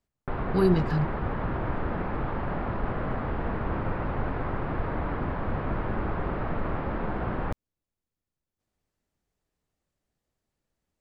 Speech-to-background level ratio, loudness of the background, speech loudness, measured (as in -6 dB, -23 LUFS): 5.0 dB, -31.5 LUFS, -26.5 LUFS